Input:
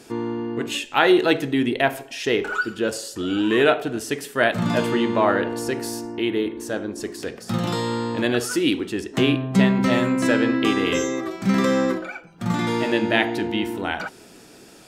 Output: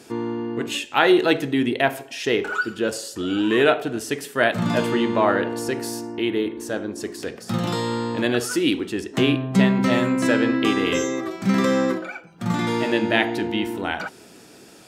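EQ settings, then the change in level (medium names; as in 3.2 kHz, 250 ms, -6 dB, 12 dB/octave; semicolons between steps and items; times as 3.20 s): high-pass 63 Hz; 0.0 dB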